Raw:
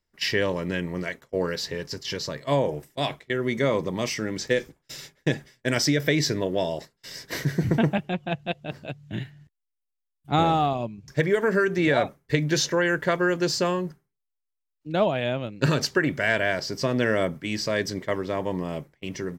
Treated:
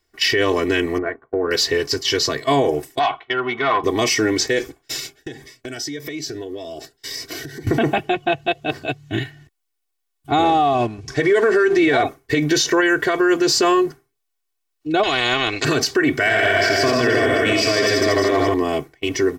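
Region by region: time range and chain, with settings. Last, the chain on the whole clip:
0.98–1.51 G.711 law mismatch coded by A + LPF 1500 Hz 24 dB/oct + compressor 4:1, threshold -28 dBFS
2.99–3.84 ladder low-pass 3300 Hz, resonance 65% + band shelf 1000 Hz +15 dB 1.3 oct + core saturation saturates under 1100 Hz
4.99–7.67 compressor 8:1, threshold -37 dBFS + cascading phaser rising 1.8 Hz
10.44–12.02 G.711 law mismatch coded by mu + Bessel low-pass 8200 Hz, order 4
15.03–15.65 air absorption 93 m + spectral compressor 4:1
16.15–18.54 reverse delay 0.154 s, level -5.5 dB + tapped delay 82/153/342 ms -3.5/-5/-9 dB
whole clip: low shelf 87 Hz -10 dB; comb 2.7 ms, depth 95%; maximiser +17.5 dB; gain -7.5 dB

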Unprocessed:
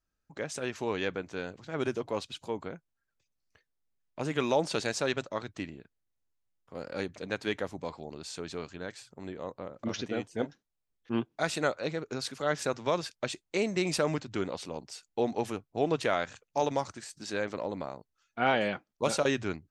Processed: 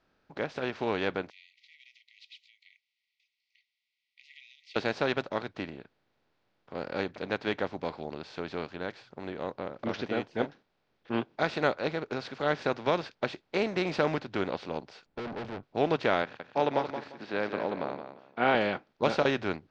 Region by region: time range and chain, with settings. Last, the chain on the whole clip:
1.3–4.76 compressor 3:1, threshold -37 dBFS + brick-wall FIR high-pass 1900 Hz + air absorption 71 m
15.06–15.63 tilt -4 dB/oct + tube stage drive 38 dB, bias 0.7
16.22–18.55 BPF 160–3200 Hz + feedback echo 0.174 s, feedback 20%, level -10 dB
whole clip: per-bin compression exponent 0.6; LPF 4400 Hz 24 dB/oct; upward expander 1.5:1, over -44 dBFS

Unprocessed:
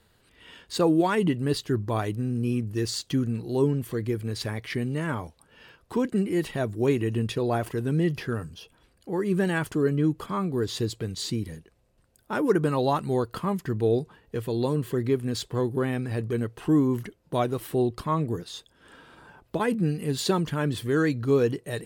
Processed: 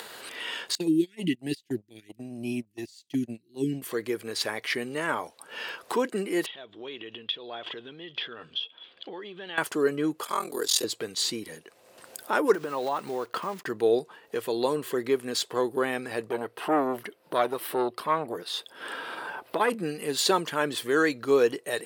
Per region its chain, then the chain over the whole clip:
0.75–3.82 inverse Chebyshev band-stop 570–1200 Hz, stop band 50 dB + gate -27 dBFS, range -27 dB + low shelf 230 Hz +9.5 dB
6.46–9.58 compressor 4:1, threshold -34 dBFS + ladder low-pass 3500 Hz, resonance 85%
10.23–10.84 tone controls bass -10 dB, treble +14 dB + ring modulator 21 Hz
12.54–13.66 block floating point 5-bit + bell 12000 Hz -8.5 dB 1.9 oct + compressor, threshold -27 dBFS
16.29–19.7 bell 6800 Hz -10.5 dB 0.52 oct + core saturation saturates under 610 Hz
whole clip: upward compressor, threshold -29 dBFS; HPF 470 Hz 12 dB/oct; gain +5 dB

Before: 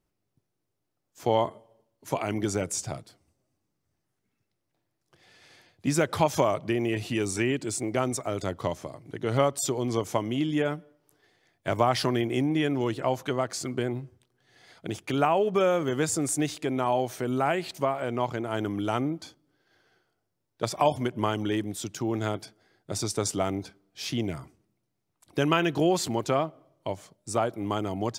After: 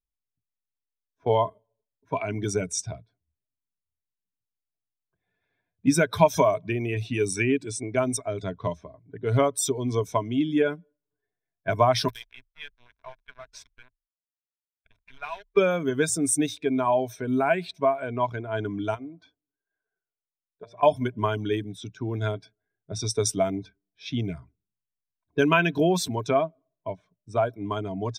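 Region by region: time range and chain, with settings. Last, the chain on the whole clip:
12.08–15.57 passive tone stack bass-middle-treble 10-0-10 + notches 60/120/180/240 Hz + requantised 6-bit, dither none
18.94–20.83 tone controls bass -6 dB, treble +2 dB + de-hum 117.7 Hz, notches 7 + compressor, threshold -33 dBFS
whole clip: per-bin expansion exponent 1.5; low-pass opened by the level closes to 1100 Hz, open at -28 dBFS; ripple EQ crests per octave 1.6, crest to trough 10 dB; gain +4.5 dB

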